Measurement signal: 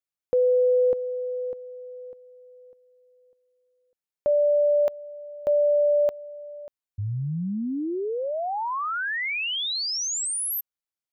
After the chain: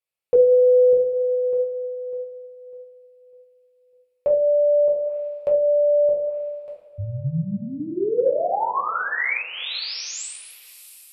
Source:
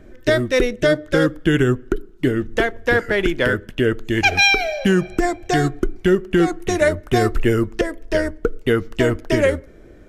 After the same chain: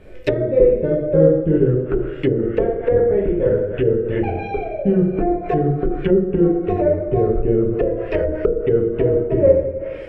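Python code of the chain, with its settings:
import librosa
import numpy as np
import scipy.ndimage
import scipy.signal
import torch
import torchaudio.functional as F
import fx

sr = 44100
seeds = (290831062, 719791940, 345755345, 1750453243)

y = fx.graphic_eq_31(x, sr, hz=(250, 500, 1600, 2500, 6300), db=(-10, 9, -4, 8, -9))
y = fx.rev_double_slope(y, sr, seeds[0], early_s=0.7, late_s=3.0, knee_db=-18, drr_db=-5.0)
y = fx.env_lowpass_down(y, sr, base_hz=450.0, full_db=-10.5)
y = y * 10.0 ** (-2.0 / 20.0)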